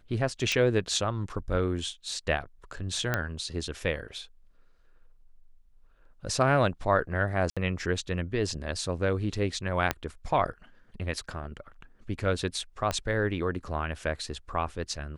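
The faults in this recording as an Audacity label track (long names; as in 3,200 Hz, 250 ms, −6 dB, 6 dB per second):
0.520000	0.520000	click −14 dBFS
3.140000	3.140000	click −12 dBFS
7.500000	7.570000	drop-out 66 ms
9.910000	9.910000	click −10 dBFS
12.910000	12.910000	click −14 dBFS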